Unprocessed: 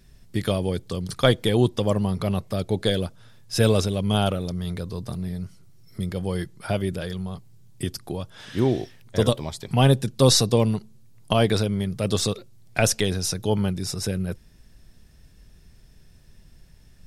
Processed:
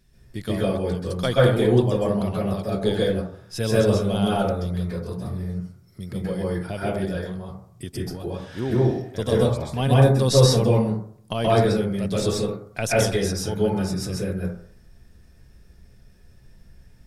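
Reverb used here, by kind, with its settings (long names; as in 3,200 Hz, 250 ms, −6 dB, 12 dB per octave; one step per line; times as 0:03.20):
dense smooth reverb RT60 0.57 s, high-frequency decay 0.3×, pre-delay 120 ms, DRR −7 dB
level −7 dB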